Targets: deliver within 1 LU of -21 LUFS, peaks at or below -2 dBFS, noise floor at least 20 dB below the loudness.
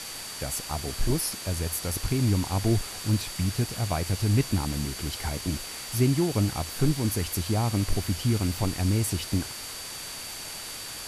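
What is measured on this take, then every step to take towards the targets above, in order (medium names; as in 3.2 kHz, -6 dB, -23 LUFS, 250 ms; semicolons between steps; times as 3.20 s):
steady tone 4.6 kHz; tone level -42 dBFS; noise floor -38 dBFS; noise floor target -48 dBFS; loudness -28.0 LUFS; peak level -11.0 dBFS; loudness target -21.0 LUFS
-> band-stop 4.6 kHz, Q 30; noise print and reduce 10 dB; trim +7 dB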